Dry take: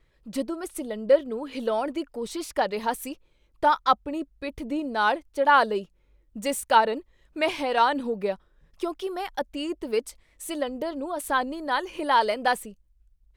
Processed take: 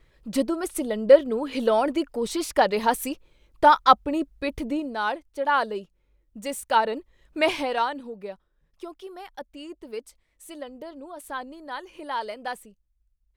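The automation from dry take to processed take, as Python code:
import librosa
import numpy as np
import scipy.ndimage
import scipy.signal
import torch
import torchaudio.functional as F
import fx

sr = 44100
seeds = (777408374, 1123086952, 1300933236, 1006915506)

y = fx.gain(x, sr, db=fx.line((4.57, 5.0), (5.02, -4.0), (6.51, -4.0), (7.52, 3.5), (8.02, -9.0)))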